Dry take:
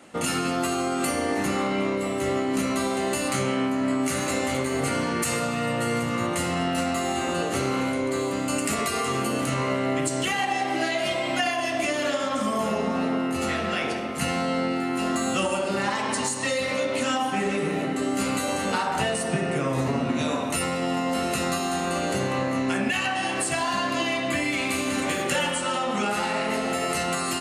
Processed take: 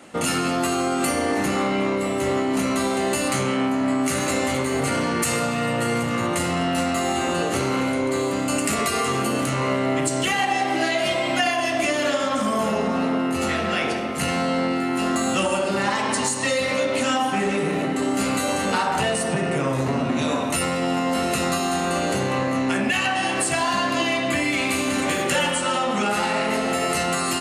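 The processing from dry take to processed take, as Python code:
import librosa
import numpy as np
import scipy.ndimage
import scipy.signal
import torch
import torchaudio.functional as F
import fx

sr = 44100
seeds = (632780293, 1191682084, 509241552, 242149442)

y = fx.transformer_sat(x, sr, knee_hz=440.0)
y = y * librosa.db_to_amplitude(4.0)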